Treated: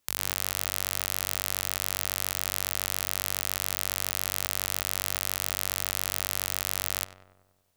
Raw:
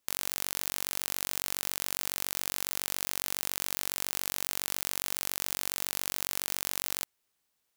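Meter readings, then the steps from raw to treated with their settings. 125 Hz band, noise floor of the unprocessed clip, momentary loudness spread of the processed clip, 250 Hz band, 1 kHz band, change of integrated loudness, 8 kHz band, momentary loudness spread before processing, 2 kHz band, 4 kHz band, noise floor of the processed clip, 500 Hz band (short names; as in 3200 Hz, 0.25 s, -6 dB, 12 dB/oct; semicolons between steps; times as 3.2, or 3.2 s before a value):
+9.0 dB, -79 dBFS, 0 LU, +4.0 dB, +4.0 dB, +3.5 dB, +3.5 dB, 0 LU, +3.5 dB, +3.5 dB, -67 dBFS, +4.5 dB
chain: bell 81 Hz +6.5 dB 1.4 oct; darkening echo 96 ms, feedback 64%, low-pass 1900 Hz, level -11 dB; gain +3.5 dB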